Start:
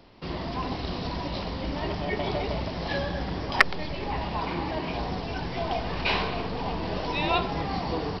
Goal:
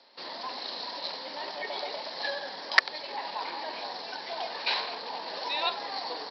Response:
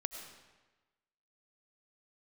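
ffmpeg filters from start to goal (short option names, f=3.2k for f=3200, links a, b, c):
-filter_complex "[0:a]aemphasis=mode=production:type=riaa,acrossover=split=300|860|4400[a][b][c][d];[a]alimiter=level_in=16dB:limit=-24dB:level=0:latency=1:release=79,volume=-16dB[e];[e][b][c][d]amix=inputs=4:normalize=0,highpass=f=220:w=0.5412,highpass=f=220:w=1.3066,equalizer=f=340:t=q:w=4:g=-3,equalizer=f=550:t=q:w=4:g=6,equalizer=f=890:t=q:w=4:g=7,equalizer=f=1.7k:t=q:w=4:g=6,equalizer=f=2.8k:t=q:w=4:g=-3,equalizer=f=4.2k:t=q:w=4:g=9,lowpass=f=5.6k:w=0.5412,lowpass=f=5.6k:w=1.3066,atempo=1.3,volume=-7.5dB"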